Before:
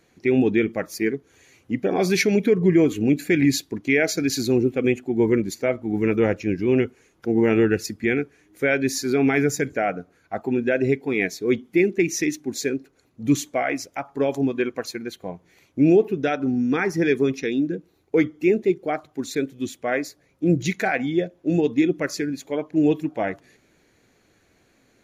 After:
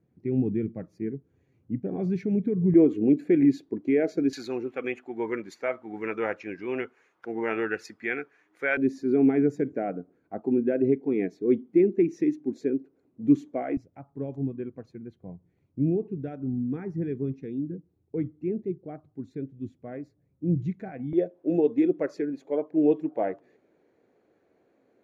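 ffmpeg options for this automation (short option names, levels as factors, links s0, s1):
-af "asetnsamples=n=441:p=0,asendcmd='2.74 bandpass f 350;4.33 bandpass f 1200;8.77 bandpass f 290;13.77 bandpass f 110;21.13 bandpass f 480',bandpass=f=130:t=q:w=1.2:csg=0"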